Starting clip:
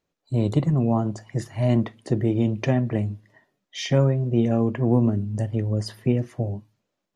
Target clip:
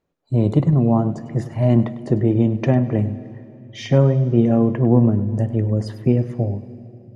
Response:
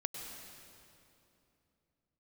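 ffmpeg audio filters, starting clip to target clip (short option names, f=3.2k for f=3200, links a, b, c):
-filter_complex "[0:a]highshelf=f=2.2k:g=-11.5,asplit=2[a][b];[1:a]atrim=start_sample=2205,adelay=100[c];[b][c]afir=irnorm=-1:irlink=0,volume=-14dB[d];[a][d]amix=inputs=2:normalize=0,volume=5dB"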